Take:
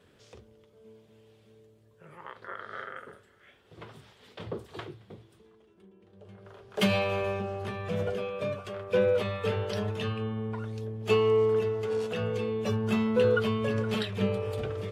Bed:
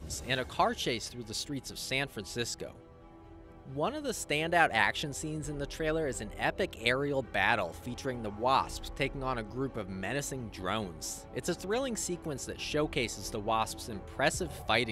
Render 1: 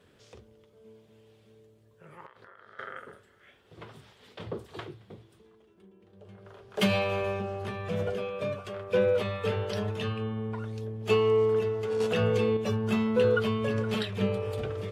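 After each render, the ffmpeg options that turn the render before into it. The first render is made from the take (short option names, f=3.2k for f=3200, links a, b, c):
-filter_complex "[0:a]asettb=1/sr,asplit=3[a][b][c];[a]atrim=end=2.264[d];[b]atrim=start=2.26:end=2.79,asetpts=PTS-STARTPTS,afade=t=in:d=0.004:c=qsin,afade=t=out:st=0.526:d=0.004:c=qsin,acompressor=threshold=-48dB:ratio=16:attack=3.2:release=140:knee=1:detection=peak[e];[c]atrim=start=2.786[f];[d][e]acrossfade=d=0.004:c1=hsin:c2=qsin[g];[g][f]acrossfade=d=0.004:c1=qsin:c2=hsin,asettb=1/sr,asplit=3[h][i][j];[h]atrim=end=12.004[k];[i]atrim=start=12:end=12.57,asetpts=PTS-STARTPTS,afade=t=in:d=0.004:c=qsin,afade=t=out:st=0.566:d=0.004:c=qsin,acontrast=37[l];[j]atrim=start=12.566[m];[k][l]acrossfade=d=0.004:c1=hsin:c2=qsin[n];[n][m]acrossfade=d=0.004:c1=qsin:c2=hsin"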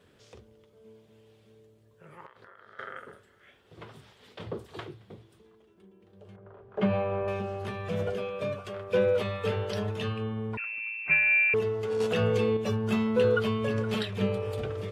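-filter_complex "[0:a]asettb=1/sr,asplit=3[a][b][c];[a]atrim=end=6.364[d];[b]atrim=start=6.36:end=7.28,asetpts=PTS-STARTPTS,afade=t=in:d=0.004:c=qsin,afade=t=out:st=0.916:d=0.004:c=qsin,lowpass=1.3k[e];[c]atrim=start=7.276[f];[d][e]acrossfade=d=0.004:c1=hsin:c2=qsin[g];[g][f]acrossfade=d=0.004:c1=qsin:c2=hsin,asettb=1/sr,asplit=3[h][i][j];[h]atrim=end=10.574[k];[i]atrim=start=10.57:end=11.54,asetpts=PTS-STARTPTS,afade=t=in:d=0.004:c=qsin,afade=t=out:st=0.966:d=0.004:c=qsin,lowpass=f=2.4k:t=q:w=0.5098,lowpass=f=2.4k:t=q:w=0.6013,lowpass=f=2.4k:t=q:w=0.9,lowpass=f=2.4k:t=q:w=2.563,afreqshift=-2800[l];[j]atrim=start=11.536[m];[k][l]acrossfade=d=0.004:c1=hsin:c2=qsin[n];[n][m]acrossfade=d=0.004:c1=qsin:c2=hsin"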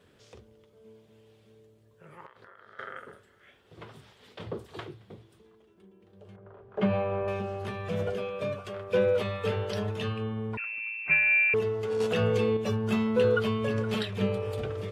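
-af anull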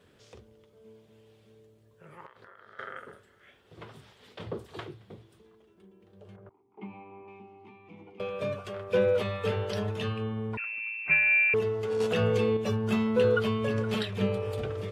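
-filter_complex "[0:a]asettb=1/sr,asplit=3[a][b][c];[a]atrim=end=6.494[d];[b]atrim=start=6.49:end=8.2,asetpts=PTS-STARTPTS,afade=t=in:d=0.004:c=qsin,afade=t=out:st=1.706:d=0.004:c=qsin,asplit=3[e][f][g];[e]bandpass=f=300:t=q:w=8,volume=0dB[h];[f]bandpass=f=870:t=q:w=8,volume=-6dB[i];[g]bandpass=f=2.24k:t=q:w=8,volume=-9dB[j];[h][i][j]amix=inputs=3:normalize=0[k];[c]atrim=start=8.196[l];[d][k]acrossfade=d=0.004:c1=hsin:c2=qsin[m];[m][l]acrossfade=d=0.004:c1=qsin:c2=hsin"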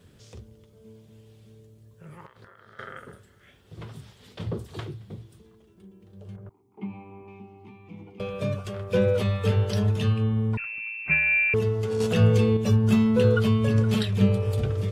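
-af "bass=f=250:g=12,treble=f=4k:g=8"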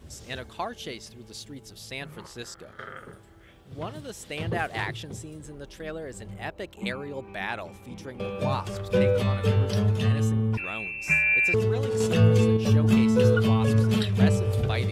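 -filter_complex "[1:a]volume=-4.5dB[a];[0:a][a]amix=inputs=2:normalize=0"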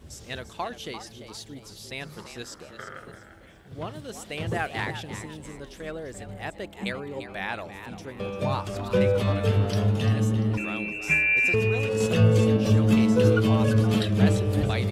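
-filter_complex "[0:a]asplit=5[a][b][c][d][e];[b]adelay=344,afreqshift=100,volume=-11dB[f];[c]adelay=688,afreqshift=200,volume=-20.1dB[g];[d]adelay=1032,afreqshift=300,volume=-29.2dB[h];[e]adelay=1376,afreqshift=400,volume=-38.4dB[i];[a][f][g][h][i]amix=inputs=5:normalize=0"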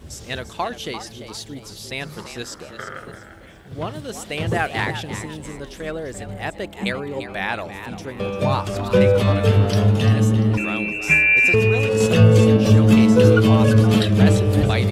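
-af "volume=7dB,alimiter=limit=-2dB:level=0:latency=1"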